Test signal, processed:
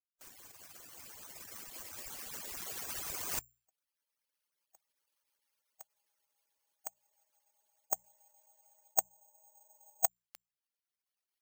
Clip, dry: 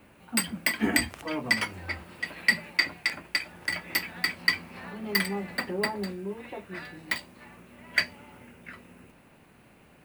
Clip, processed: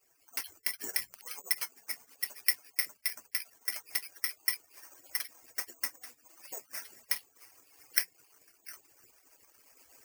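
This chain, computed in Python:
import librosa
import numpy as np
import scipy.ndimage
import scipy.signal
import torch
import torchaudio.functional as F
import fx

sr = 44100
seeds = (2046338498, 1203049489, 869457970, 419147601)

y = fx.hpss_only(x, sr, part='percussive')
y = fx.recorder_agc(y, sr, target_db=-10.5, rise_db_per_s=5.8, max_gain_db=30)
y = fx.low_shelf(y, sr, hz=360.0, db=-12.0)
y = fx.hum_notches(y, sr, base_hz=60, count=3)
y = (np.kron(scipy.signal.resample_poly(y, 1, 6), np.eye(6)[0]) * 6)[:len(y)]
y = F.gain(torch.from_numpy(y), -13.0).numpy()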